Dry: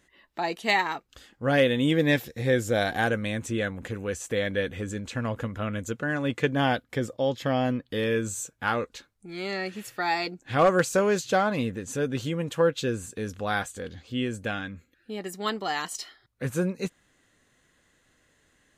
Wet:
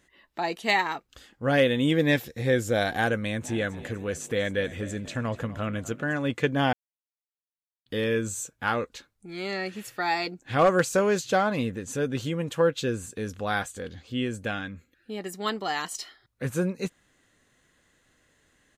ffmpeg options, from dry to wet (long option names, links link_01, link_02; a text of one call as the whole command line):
ffmpeg -i in.wav -filter_complex "[0:a]asplit=3[link_01][link_02][link_03];[link_01]afade=type=out:start_time=3.41:duration=0.02[link_04];[link_02]asplit=5[link_05][link_06][link_07][link_08][link_09];[link_06]adelay=246,afreqshift=44,volume=-17dB[link_10];[link_07]adelay=492,afreqshift=88,volume=-23dB[link_11];[link_08]adelay=738,afreqshift=132,volume=-29dB[link_12];[link_09]adelay=984,afreqshift=176,volume=-35.1dB[link_13];[link_05][link_10][link_11][link_12][link_13]amix=inputs=5:normalize=0,afade=type=in:start_time=3.41:duration=0.02,afade=type=out:start_time=6.12:duration=0.02[link_14];[link_03]afade=type=in:start_time=6.12:duration=0.02[link_15];[link_04][link_14][link_15]amix=inputs=3:normalize=0,asplit=3[link_16][link_17][link_18];[link_16]atrim=end=6.73,asetpts=PTS-STARTPTS,afade=type=out:start_time=6.726:duration=0.004:curve=hsin[link_19];[link_17]atrim=start=6.73:end=7.86,asetpts=PTS-STARTPTS,volume=0[link_20];[link_18]atrim=start=7.86,asetpts=PTS-STARTPTS,afade=type=in:duration=0.004:curve=hsin[link_21];[link_19][link_20][link_21]concat=n=3:v=0:a=1" out.wav